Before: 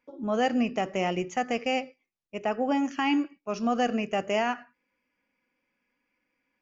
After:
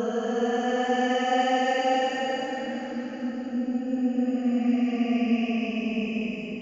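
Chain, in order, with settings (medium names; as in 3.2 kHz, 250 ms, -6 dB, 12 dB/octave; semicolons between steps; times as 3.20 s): Chebyshev shaper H 2 -32 dB, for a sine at -15 dBFS; Paulstretch 21×, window 0.10 s, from 0.37 s; trim -1.5 dB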